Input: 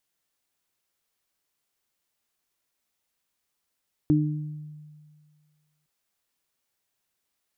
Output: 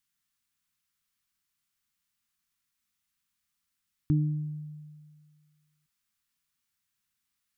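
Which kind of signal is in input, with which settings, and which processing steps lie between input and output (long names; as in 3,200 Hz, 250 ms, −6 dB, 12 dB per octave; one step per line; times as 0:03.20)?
harmonic partials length 1.76 s, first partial 151 Hz, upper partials 4 dB, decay 1.88 s, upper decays 0.71 s, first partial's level −20 dB
drawn EQ curve 220 Hz 0 dB, 520 Hz −23 dB, 1,200 Hz −2 dB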